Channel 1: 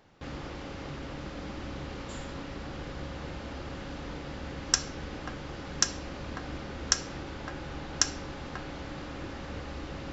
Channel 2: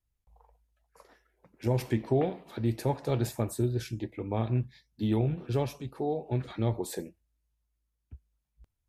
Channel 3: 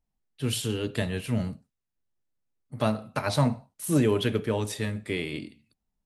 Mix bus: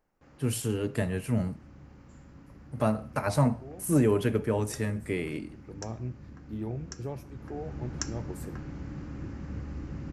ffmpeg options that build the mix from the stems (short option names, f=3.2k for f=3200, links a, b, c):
-filter_complex "[0:a]highpass=f=150:p=1,asubboost=boost=8:cutoff=210,volume=-6dB,afade=t=in:st=7.21:d=0.67:silence=0.334965[a];[1:a]adelay=1500,volume=-8dB[b];[2:a]acontrast=51,volume=-6dB,asplit=2[c][d];[d]apad=whole_len=457912[e];[b][e]sidechaincompress=threshold=-47dB:ratio=3:attack=16:release=284[f];[a][f][c]amix=inputs=3:normalize=0,equalizer=f=3.6k:t=o:w=0.83:g=-13"